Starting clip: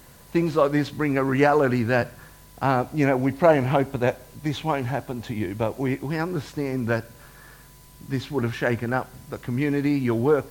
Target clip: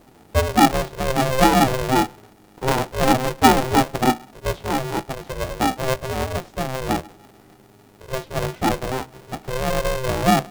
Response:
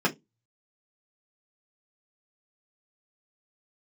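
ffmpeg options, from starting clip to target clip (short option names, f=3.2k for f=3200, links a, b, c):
-af "lowshelf=f=790:t=q:w=3:g=11.5,flanger=delay=8.5:depth=7.9:regen=49:speed=0.6:shape=triangular,aeval=exprs='val(0)*sgn(sin(2*PI*260*n/s))':c=same,volume=-8dB"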